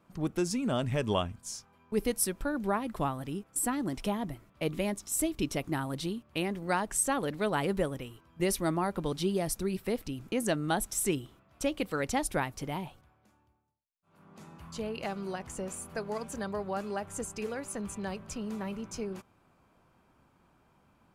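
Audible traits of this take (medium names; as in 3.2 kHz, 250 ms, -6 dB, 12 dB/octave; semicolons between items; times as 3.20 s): noise floor -67 dBFS; spectral tilt -4.5 dB/octave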